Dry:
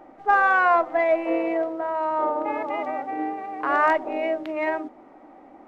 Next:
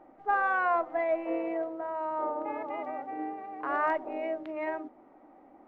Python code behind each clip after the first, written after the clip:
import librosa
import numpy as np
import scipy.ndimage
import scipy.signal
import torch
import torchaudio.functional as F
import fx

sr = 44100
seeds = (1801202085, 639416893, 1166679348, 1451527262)

y = fx.high_shelf(x, sr, hz=3600.0, db=-12.0)
y = F.gain(torch.from_numpy(y), -7.5).numpy()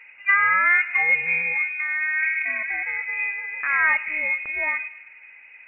y = fx.echo_filtered(x, sr, ms=104, feedback_pct=66, hz=1500.0, wet_db=-16.0)
y = fx.freq_invert(y, sr, carrier_hz=2800)
y = F.gain(torch.from_numpy(y), 8.5).numpy()